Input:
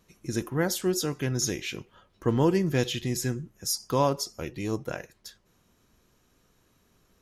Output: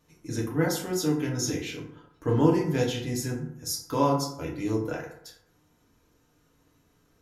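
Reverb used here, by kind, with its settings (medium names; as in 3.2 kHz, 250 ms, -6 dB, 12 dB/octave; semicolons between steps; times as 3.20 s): FDN reverb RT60 0.71 s, low-frequency decay 1×, high-frequency decay 0.45×, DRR -3 dB; trim -5 dB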